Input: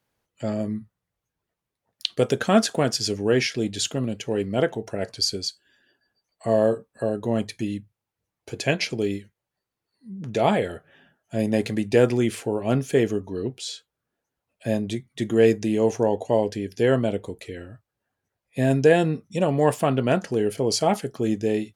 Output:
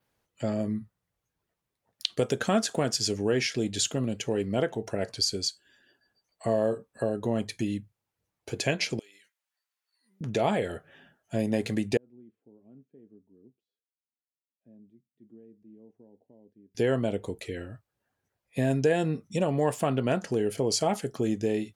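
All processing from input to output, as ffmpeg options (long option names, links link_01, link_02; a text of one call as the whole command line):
ffmpeg -i in.wav -filter_complex "[0:a]asettb=1/sr,asplit=3[link_01][link_02][link_03];[link_01]atrim=end=8.994[link_04];[link_02]atrim=start=8.99:end=10.21,asetpts=PTS-STARTPTS,afade=type=in:duration=0.004:curve=qsin,afade=type=out:start_time=1.216:duration=0.004:curve=qsin,highpass=1300,acompressor=threshold=-52dB:ratio=12:attack=3.2:release=140:knee=1:detection=peak[link_05];[link_03]atrim=start=10.206[link_06];[link_04][link_05]acrossfade=duration=0.004:curve1=hsin:curve2=qsin[link_07];[link_07][link_06]acrossfade=duration=0.004:curve1=qsin:curve2=hsin,asettb=1/sr,asplit=3[link_08][link_09][link_10];[link_08]atrim=end=11.974[link_11];[link_09]atrim=start=11.97:end=16.75,asetpts=PTS-STARTPTS,afade=type=in:duration=0.004:curve=qsin,afade=type=out:start_time=4.776:duration=0.004:curve=qsin,aderivative,acompressor=threshold=-44dB:ratio=2:attack=3.2:release=140:knee=1:detection=peak,lowpass=frequency=240:width_type=q:width=1.8[link_12];[link_10]atrim=start=16.746[link_13];[link_11][link_12]acrossfade=duration=0.004:curve1=hsin:curve2=qsin[link_14];[link_14][link_13]acrossfade=duration=0.004:curve1=qsin:curve2=hsin,adynamicequalizer=threshold=0.00562:dfrequency=7300:dqfactor=2.2:tfrequency=7300:tqfactor=2.2:attack=5:release=100:ratio=0.375:range=2:mode=boostabove:tftype=bell,acompressor=threshold=-26dB:ratio=2" out.wav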